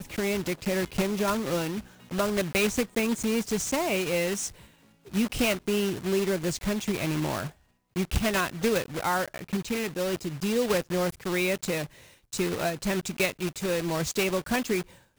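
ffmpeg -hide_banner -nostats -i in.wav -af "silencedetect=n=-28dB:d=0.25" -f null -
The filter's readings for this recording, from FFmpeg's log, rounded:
silence_start: 1.79
silence_end: 2.12 | silence_duration: 0.33
silence_start: 4.47
silence_end: 5.14 | silence_duration: 0.67
silence_start: 7.47
silence_end: 7.96 | silence_duration: 0.49
silence_start: 11.84
silence_end: 12.33 | silence_duration: 0.49
silence_start: 14.81
silence_end: 15.19 | silence_duration: 0.37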